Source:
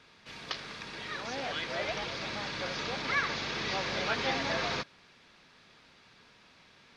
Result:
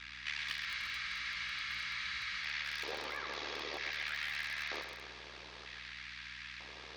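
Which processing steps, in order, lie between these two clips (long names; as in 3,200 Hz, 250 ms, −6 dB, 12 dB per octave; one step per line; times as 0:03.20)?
low-pass filter 6,600 Hz 12 dB per octave
low-shelf EQ 390 Hz −9.5 dB
notch filter 1,500 Hz, Q 11
brickwall limiter −28.5 dBFS, peak gain reduction 8 dB
downward compressor 20 to 1, threshold −49 dBFS, peak gain reduction 16.5 dB
auto-filter high-pass square 0.53 Hz 380–1,800 Hz
amplitude modulation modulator 74 Hz, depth 90%
mains hum 60 Hz, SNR 18 dB
on a send: feedback echo with a high-pass in the loop 128 ms, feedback 61%, high-pass 360 Hz, level −6.5 dB
on the sum: frozen spectrum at 0:00.67, 1.76 s
feedback echo at a low word length 216 ms, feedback 55%, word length 8 bits, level −9 dB
level +12.5 dB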